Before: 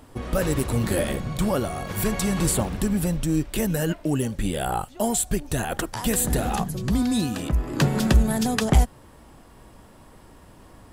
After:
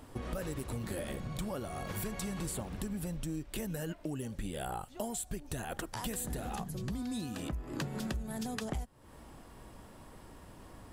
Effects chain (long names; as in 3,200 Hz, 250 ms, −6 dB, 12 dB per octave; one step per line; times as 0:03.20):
downward compressor 6 to 1, threshold −32 dBFS, peak gain reduction 18.5 dB
level −3.5 dB